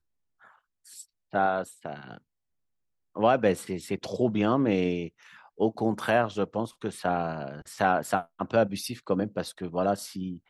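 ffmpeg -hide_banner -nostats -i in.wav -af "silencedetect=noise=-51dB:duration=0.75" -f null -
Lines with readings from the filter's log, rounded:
silence_start: 2.18
silence_end: 3.15 | silence_duration: 0.98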